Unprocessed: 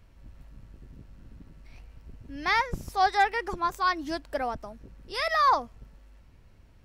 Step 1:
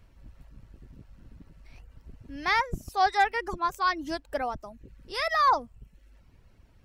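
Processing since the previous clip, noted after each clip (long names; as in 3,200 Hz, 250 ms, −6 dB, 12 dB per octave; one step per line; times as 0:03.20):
reverb reduction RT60 0.61 s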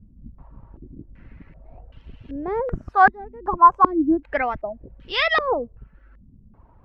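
low-pass on a step sequencer 2.6 Hz 220–3,100 Hz
level +5.5 dB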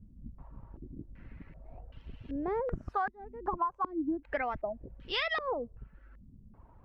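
downward compressor 16 to 1, threshold −24 dBFS, peak gain reduction 18 dB
level −4.5 dB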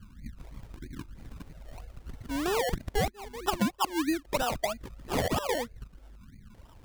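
sample-and-hold swept by an LFO 28×, swing 60% 3.1 Hz
level +4 dB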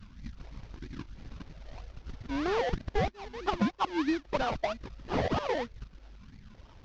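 variable-slope delta modulation 32 kbit/s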